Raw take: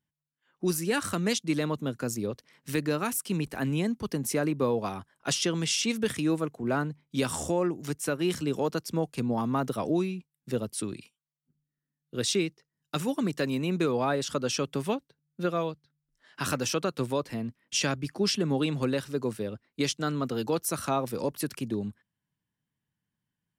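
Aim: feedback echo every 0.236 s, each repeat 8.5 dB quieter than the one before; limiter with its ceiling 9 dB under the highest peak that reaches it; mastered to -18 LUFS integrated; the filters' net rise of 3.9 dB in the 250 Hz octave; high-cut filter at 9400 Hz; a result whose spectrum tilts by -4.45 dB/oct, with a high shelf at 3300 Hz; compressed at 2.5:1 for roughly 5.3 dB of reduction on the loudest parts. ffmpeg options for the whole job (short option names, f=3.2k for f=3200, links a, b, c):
-af "lowpass=9.4k,equalizer=f=250:t=o:g=5,highshelf=f=3.3k:g=8,acompressor=threshold=-27dB:ratio=2.5,alimiter=level_in=0.5dB:limit=-24dB:level=0:latency=1,volume=-0.5dB,aecho=1:1:236|472|708|944:0.376|0.143|0.0543|0.0206,volume=15.5dB"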